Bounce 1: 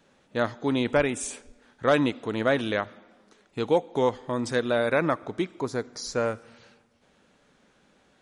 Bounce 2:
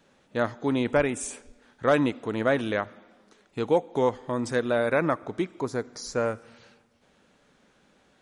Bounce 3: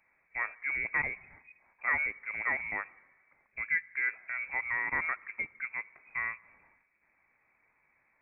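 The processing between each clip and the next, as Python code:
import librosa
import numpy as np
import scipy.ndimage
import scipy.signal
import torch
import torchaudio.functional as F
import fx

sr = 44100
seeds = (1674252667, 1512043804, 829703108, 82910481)

y1 = fx.dynamic_eq(x, sr, hz=3800.0, q=1.3, threshold_db=-48.0, ratio=4.0, max_db=-5)
y2 = fx.freq_invert(y1, sr, carrier_hz=2500)
y2 = y2 * 10.0 ** (-8.5 / 20.0)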